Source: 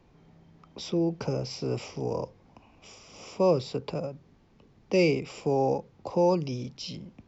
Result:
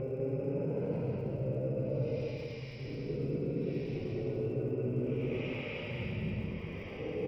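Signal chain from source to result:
reversed piece by piece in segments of 104 ms
extreme stretch with random phases 10×, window 0.10 s, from 0:01.25
reversed playback
downward compressor, threshold −37 dBFS, peak gain reduction 13 dB
reversed playback
low-pass filter 2,500 Hz 24 dB per octave
flat-topped bell 1,000 Hz −9.5 dB 1.3 octaves
bouncing-ball delay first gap 200 ms, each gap 0.65×, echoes 5
surface crackle 160 per second −64 dBFS
level +4 dB

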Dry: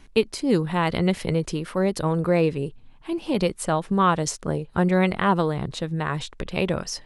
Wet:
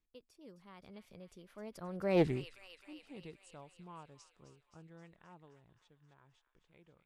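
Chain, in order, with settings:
source passing by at 0:02.24, 37 m/s, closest 1.9 metres
on a send: delay with a high-pass on its return 263 ms, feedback 67%, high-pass 1,700 Hz, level −9 dB
on the sum: highs frequency-modulated by the lows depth 0.28 ms
level −3 dB

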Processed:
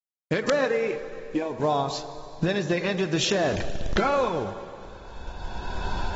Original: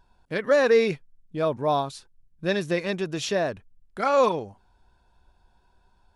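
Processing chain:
0:03.32–0:04.09: converter with a step at zero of −33 dBFS
camcorder AGC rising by 19 dB per second
noise gate −50 dBFS, range −29 dB
downward compressor 10 to 1, threshold −26 dBFS, peak gain reduction 12 dB
0:00.66–0:01.60: phaser with its sweep stopped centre 850 Hz, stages 8
log-companded quantiser 6 bits
wrap-around overflow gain 17 dB
delay with a band-pass on its return 108 ms, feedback 70%, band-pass 770 Hz, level −14 dB
four-comb reverb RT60 3.2 s, combs from 33 ms, DRR 12 dB
level +5 dB
AAC 24 kbit/s 44,100 Hz

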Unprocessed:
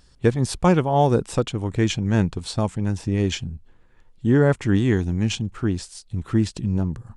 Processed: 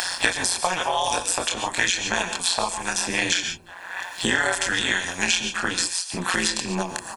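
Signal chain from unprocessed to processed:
high-pass filter 760 Hz 12 dB per octave
high-shelf EQ 4,600 Hz +9 dB
comb filter 1.2 ms, depth 73%
in parallel at −3 dB: downward compressor, threshold −33 dBFS, peak gain reduction 17 dB
on the sum: multi-voice chorus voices 4, 0.57 Hz, delay 26 ms, depth 2.8 ms
amplitude modulation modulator 180 Hz, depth 100%
reverb whose tail is shaped and stops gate 160 ms rising, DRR 10.5 dB
boost into a limiter +17.5 dB
multiband upward and downward compressor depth 100%
level −7.5 dB

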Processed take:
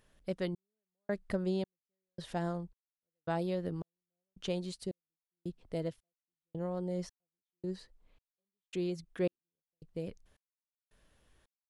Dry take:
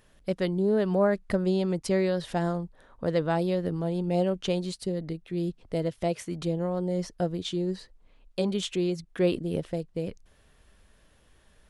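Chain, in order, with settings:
gate pattern "xxxxxx......" 165 BPM −60 dB
level −7.5 dB

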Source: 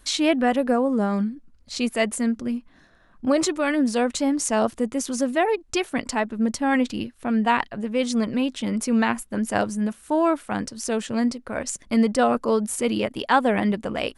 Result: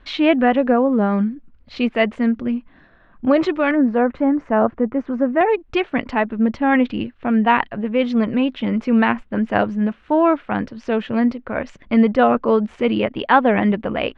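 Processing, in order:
low-pass filter 3,100 Hz 24 dB per octave, from 0:03.71 1,800 Hz, from 0:05.41 3,000 Hz
level +5 dB

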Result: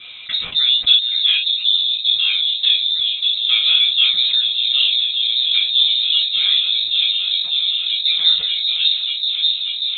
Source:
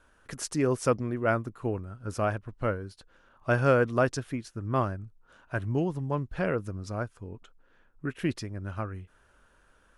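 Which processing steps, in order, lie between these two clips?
parametric band 410 Hz +8.5 dB 0.73 octaves
harmonic and percussive parts rebalanced harmonic −11 dB
high-shelf EQ 2,400 Hz +8 dB
echo whose low-pass opens from repeat to repeat 588 ms, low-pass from 200 Hz, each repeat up 1 octave, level −3 dB
convolution reverb, pre-delay 3 ms, DRR −6.5 dB
voice inversion scrambler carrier 3,900 Hz
envelope flattener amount 50%
level −13.5 dB

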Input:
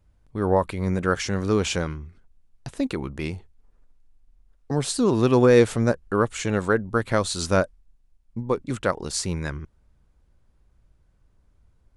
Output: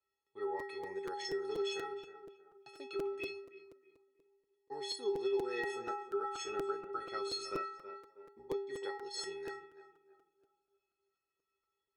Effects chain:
0:06.43–0:08.66: sub-octave generator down 1 octave, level +1 dB
three-way crossover with the lows and the highs turned down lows −16 dB, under 380 Hz, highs −18 dB, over 5,100 Hz
stiff-string resonator 390 Hz, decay 0.65 s, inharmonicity 0.03
tape delay 319 ms, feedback 42%, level −12 dB, low-pass 1,500 Hz
downward compressor 3 to 1, threshold −46 dBFS, peak gain reduction 10 dB
high-pass filter 130 Hz 12 dB per octave
regular buffer underruns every 0.24 s, samples 256, repeat, from 0:00.59
phaser whose notches keep moving one way falling 0.26 Hz
level +13 dB

